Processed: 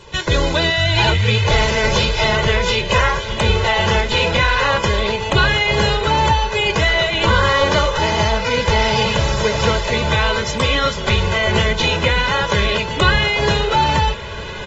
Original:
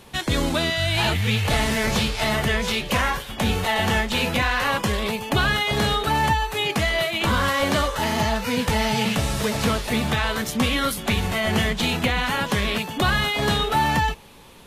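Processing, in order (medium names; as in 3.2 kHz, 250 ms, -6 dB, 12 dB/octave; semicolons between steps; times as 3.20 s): recorder AGC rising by 15 dB/s; comb 2 ms, depth 73%; echo that smears into a reverb 1621 ms, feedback 55%, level -14.5 dB; trim +3 dB; AAC 24 kbps 48 kHz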